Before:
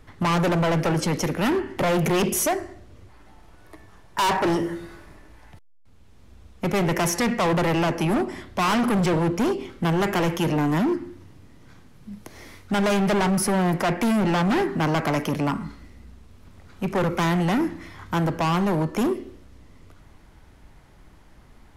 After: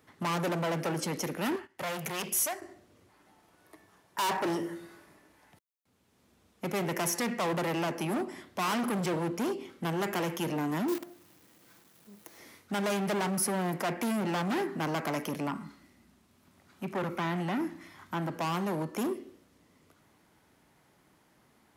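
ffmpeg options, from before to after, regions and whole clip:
-filter_complex "[0:a]asettb=1/sr,asplit=3[a][b][c];[a]atrim=end=1.564[d];[b]atrim=start=1.56:end=2.62,asetpts=PTS-STARTPTS,afade=t=in:d=0.004:c=qsin,afade=t=out:st=1.056:d=0.004:c=qsin,agate=range=-14dB:threshold=-32dB:ratio=16:release=100:detection=peak,equalizer=f=300:w=0.78:g=-12[e];[c]atrim=start=2.616[f];[d][e]acrossfade=d=0.004:c1=hsin:c2=qsin[g];[g][f]acrossfade=d=0.004:c1=qsin:c2=hsin,asettb=1/sr,asplit=3[h][i][j];[h]atrim=end=10.884[k];[i]atrim=start=10.88:end=12.39,asetpts=PTS-STARTPTS,afade=t=in:d=0.004:c=qsin,afade=t=out:st=1.506:d=0.004:c=qsin,equalizer=f=150:t=o:w=0.66:g=-7,aecho=1:1:5.9:0.4,atrim=end_sample=66591,acrusher=bits=6:dc=4:mix=0:aa=0.000001[l];[j]atrim=start=12.386[m];[k][l]acrossfade=d=0.004:c1=hsin:c2=qsin[n];[n][m]acrossfade=d=0.004:c1=qsin:c2=hsin,asettb=1/sr,asplit=3[o][p][q];[o]atrim=end=15.474[r];[p]atrim=start=15.47:end=18.36,asetpts=PTS-STARTPTS,afade=t=in:d=0.004:c=qsin,afade=t=out:st=2.886:d=0.004:c=qsin,acrossover=split=3900[s][t];[t]acompressor=threshold=-50dB:ratio=4:attack=1:release=60[u];[s][u]amix=inputs=2:normalize=0,bandreject=f=470:w=5.5[v];[q]atrim=start=18.356[w];[r][v]acrossfade=d=0.004:c1=hsin:c2=qsin[x];[x][w]acrossfade=d=0.004:c1=qsin:c2=hsin,highpass=170,highshelf=f=10k:g=10.5,volume=-8.5dB"

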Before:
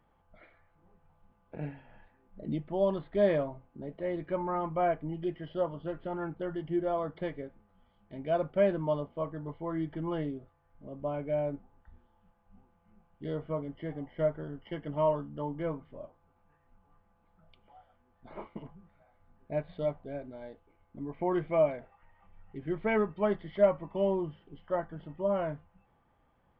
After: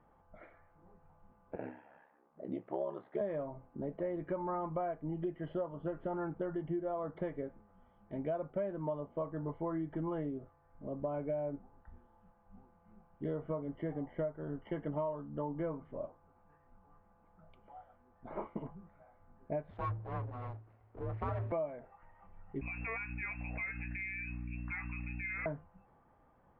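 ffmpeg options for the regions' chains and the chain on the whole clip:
-filter_complex "[0:a]asettb=1/sr,asplit=3[a][b][c];[a]atrim=end=1.564[d];[b]atrim=start=1.56:end=3.21,asetpts=PTS-STARTPTS,afade=t=in:d=0.004:c=qsin,afade=t=out:st=1.646:d=0.004:c=qsin,highpass=320,aeval=exprs='val(0)*sin(2*PI*34*n/s)':c=same,asplit=2[e][f];[f]adelay=20,volume=-13dB[g];[e][g]amix=inputs=2:normalize=0,atrim=end_sample=72765[h];[c]atrim=start=3.206[i];[d][h]acrossfade=d=0.004:c1=hsin:c2=qsin[j];[j][i]acrossfade=d=0.004:c1=qsin:c2=hsin,asettb=1/sr,asplit=3[k][l][m];[k]atrim=end=19.704[n];[l]atrim=start=19.7:end=21.52,asetpts=PTS-STARTPTS,afade=t=in:d=0.004:c=qsin,afade=t=out:st=1.816:d=0.004:c=qsin,bandreject=f=50:t=h:w=6,bandreject=f=100:t=h:w=6,bandreject=f=150:t=h:w=6,bandreject=f=200:t=h:w=6,bandreject=f=250:t=h:w=6,bandreject=f=300:t=h:w=6,bandreject=f=350:t=h:w=6,bandreject=f=400:t=h:w=6,bandreject=f=450:t=h:w=6,aeval=exprs='abs(val(0))':c=same,afreqshift=-110[o];[m]atrim=start=21.516[p];[n][o]acrossfade=d=0.004:c1=hsin:c2=qsin[q];[q][p]acrossfade=d=0.004:c1=qsin:c2=hsin,asettb=1/sr,asplit=3[r][s][t];[r]atrim=end=22.614[u];[s]atrim=start=22.61:end=25.46,asetpts=PTS-STARTPTS,afade=t=in:d=0.004:c=qsin,afade=t=out:st=2.846:d=0.004:c=qsin,lowpass=f=2.3k:t=q:w=0.5098,lowpass=f=2.3k:t=q:w=0.6013,lowpass=f=2.3k:t=q:w=0.9,lowpass=f=2.3k:t=q:w=2.563,afreqshift=-2700,aeval=exprs='val(0)+0.00891*(sin(2*PI*60*n/s)+sin(2*PI*2*60*n/s)/2+sin(2*PI*3*60*n/s)/3+sin(2*PI*4*60*n/s)/4+sin(2*PI*5*60*n/s)/5)':c=same,acompressor=threshold=-35dB:ratio=5:attack=3.2:release=140:knee=1:detection=peak[v];[t]atrim=start=25.456[w];[u][v]acrossfade=d=0.004:c1=hsin:c2=qsin[x];[x][w]acrossfade=d=0.004:c1=qsin:c2=hsin,lowpass=1.5k,lowshelf=f=180:g=-4.5,acompressor=threshold=-38dB:ratio=10,volume=4.5dB"

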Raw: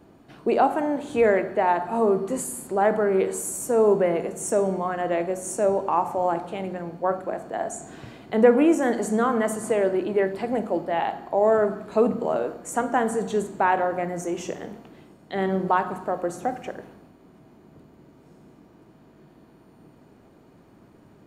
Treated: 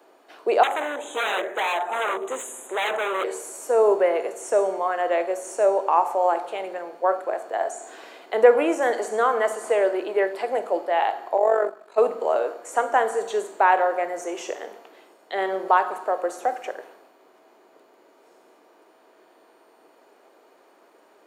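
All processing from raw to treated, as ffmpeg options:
-filter_complex "[0:a]asettb=1/sr,asplit=3[a][b][c];[a]atrim=end=0.634[d];[b]atrim=start=0.63:end=3.24,asetpts=PTS-STARTPTS,afade=t=in:d=0.004:c=qsin,afade=t=out:st=2.606:d=0.004:c=qsin,equalizer=f=6k:t=o:w=0.73:g=10,aeval=exprs='0.0794*(abs(mod(val(0)/0.0794+3,4)-2)-1)':c=same,asuperstop=centerf=5000:order=12:qfactor=2.1[e];[c]atrim=start=3.236[f];[d][e]acrossfade=d=0.004:c1=hsin:c2=qsin[g];[g][f]acrossfade=d=0.004:c1=qsin:c2=hsin,asettb=1/sr,asplit=3[h][i][j];[h]atrim=end=11.374[k];[i]atrim=start=11.37:end=11.98,asetpts=PTS-STARTPTS,afade=t=in:d=0.004:c=qsin,afade=t=out:st=0.606:d=0.004:c=qsin,agate=range=-8dB:threshold=-26dB:ratio=16:release=100:detection=peak,tremolo=f=47:d=0.71[l];[j]atrim=start=11.976[m];[k][l]acrossfade=d=0.004:c1=hsin:c2=qsin[n];[n][m]acrossfade=d=0.004:c1=qsin:c2=hsin,acrossover=split=5200[o][p];[p]acompressor=threshold=-44dB:ratio=4:attack=1:release=60[q];[o][q]amix=inputs=2:normalize=0,highpass=f=430:w=0.5412,highpass=f=430:w=1.3066,volume=3.5dB"

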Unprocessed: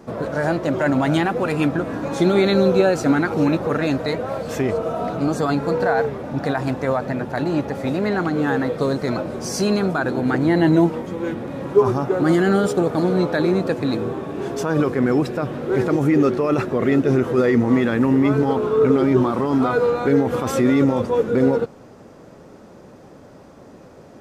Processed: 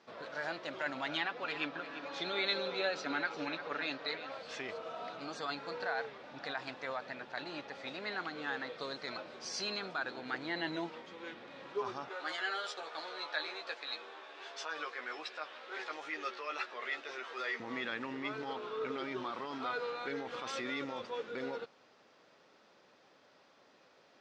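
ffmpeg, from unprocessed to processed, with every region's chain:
-filter_complex "[0:a]asettb=1/sr,asplit=3[a][b][c];[a]atrim=end=1.084[d];[b]atrim=start=1.08:end=4.32,asetpts=PTS-STARTPTS,afade=t=in:d=0.004:c=qsin,afade=t=out:st=3.236:d=0.004:c=qsin,highpass=160,lowpass=5.8k,aecho=1:1:7:0.41,atrim=end_sample=142884,aecho=1:1:346:0.251,atrim=end_sample=142884[e];[c]atrim=start=4.316[f];[d][e]acrossfade=d=0.004:c1=hsin:c2=qsin[g];[g][f]acrossfade=d=0.004:c1=qsin:c2=hsin,asettb=1/sr,asplit=3[h][i][j];[h]atrim=end=12.094[k];[i]atrim=start=12.09:end=17.6,asetpts=PTS-STARTPTS,afade=t=in:d=0.004:c=qsin,afade=t=out:st=5.506:d=0.004:c=qsin,highpass=650,asplit=2[l][m];[m]adelay=13,volume=-3.5dB[n];[l][n]amix=inputs=2:normalize=0,atrim=end_sample=242991[o];[j]atrim=start=17.596[p];[k][o]acrossfade=d=0.004:c1=hsin:c2=qsin[q];[q][p]acrossfade=d=0.004:c1=qsin:c2=hsin,lowpass=f=4.2k:w=0.5412,lowpass=f=4.2k:w=1.3066,aderivative,volume=1.5dB"

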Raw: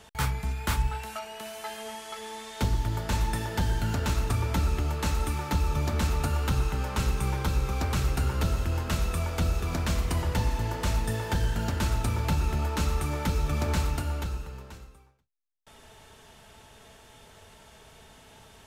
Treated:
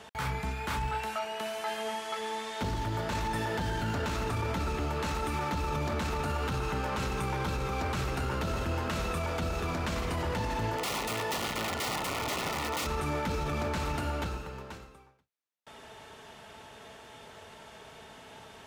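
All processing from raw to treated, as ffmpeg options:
-filter_complex "[0:a]asettb=1/sr,asplit=3[a][b][c];[a]atrim=end=10.764[d];[b]atrim=start=10.76:end=12.87,asetpts=PTS-STARTPTS,afade=t=in:d=0.004:c=qsin,afade=t=out:st=2.106:d=0.004:c=qsin,lowshelf=f=230:g=-7,aeval=exprs='(mod(23.7*val(0)+1,2)-1)/23.7':c=same,asuperstop=centerf=1600:order=20:qfactor=7.1[e];[c]atrim=start=12.866[f];[d][e]acrossfade=d=0.004:c1=hsin:c2=qsin[g];[g][f]acrossfade=d=0.004:c1=qsin:c2=hsin,highpass=f=220:p=1,highshelf=f=5.4k:g=-11,alimiter=level_in=5.5dB:limit=-24dB:level=0:latency=1:release=12,volume=-5.5dB,volume=5.5dB"

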